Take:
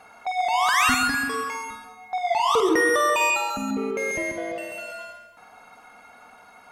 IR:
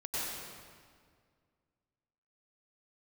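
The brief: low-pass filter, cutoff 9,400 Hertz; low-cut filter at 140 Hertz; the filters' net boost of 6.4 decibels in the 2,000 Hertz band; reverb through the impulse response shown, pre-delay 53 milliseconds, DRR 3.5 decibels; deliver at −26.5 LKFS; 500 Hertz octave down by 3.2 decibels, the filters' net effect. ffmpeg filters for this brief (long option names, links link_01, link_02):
-filter_complex "[0:a]highpass=140,lowpass=9400,equalizer=frequency=500:width_type=o:gain=-4.5,equalizer=frequency=2000:width_type=o:gain=8,asplit=2[link_01][link_02];[1:a]atrim=start_sample=2205,adelay=53[link_03];[link_02][link_03]afir=irnorm=-1:irlink=0,volume=-8.5dB[link_04];[link_01][link_04]amix=inputs=2:normalize=0,volume=-9dB"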